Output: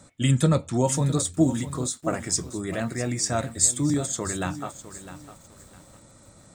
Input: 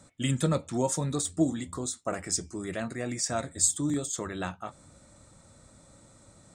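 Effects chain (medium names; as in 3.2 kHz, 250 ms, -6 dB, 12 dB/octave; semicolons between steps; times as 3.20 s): dynamic bell 110 Hz, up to +6 dB, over -44 dBFS, Q 1.3; bit-crushed delay 655 ms, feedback 35%, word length 8-bit, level -13 dB; trim +4 dB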